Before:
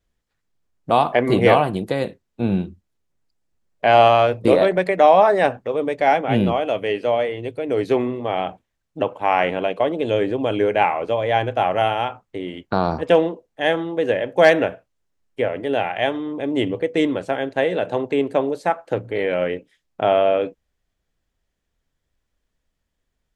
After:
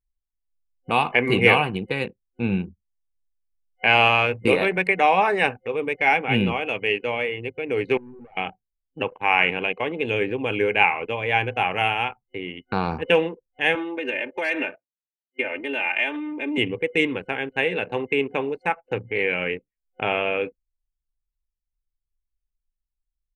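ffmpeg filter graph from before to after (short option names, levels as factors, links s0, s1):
-filter_complex "[0:a]asettb=1/sr,asplit=3[s0][s1][s2];[s0]atrim=end=7.974[s3];[s1]atrim=start=7.97:end=8.37,asetpts=PTS-STARTPTS,afade=t=in:d=0.004:c=qsin,afade=t=out:st=0.396:d=0.004:c=qsin,acompressor=threshold=0.0631:ratio=10:attack=3.2:release=140:knee=1:detection=peak,aeval=exprs='(tanh(56.2*val(0)+0.2)-tanh(0.2))/56.2':c=same[s4];[s2]atrim=start=8.366[s5];[s3][s4]acrossfade=d=0.004:c1=hsin:c2=qsin[s6];[s6][s5]acrossfade=d=0.004:c1=qsin:c2=hsin,asettb=1/sr,asplit=3[s7][s8][s9];[s7]atrim=end=13.754[s10];[s8]atrim=start=13.75:end=16.58,asetpts=PTS-STARTPTS,afade=t=in:d=0.004:c=qsin,afade=t=out:st=2.826:d=0.004:c=qsin,highpass=260,acompressor=threshold=0.1:ratio=5:attack=3.2:release=140:knee=1:detection=peak,aecho=1:1:3.3:0.84,atrim=end_sample=124803[s11];[s9]atrim=start=16.576[s12];[s10][s11]acrossfade=d=0.004:c1=hsin:c2=qsin[s13];[s13][s12]acrossfade=d=0.004:c1=qsin:c2=hsin,anlmdn=10,superequalizer=6b=0.708:8b=0.355:11b=1.58:12b=3.98:16b=1.78,volume=0.708"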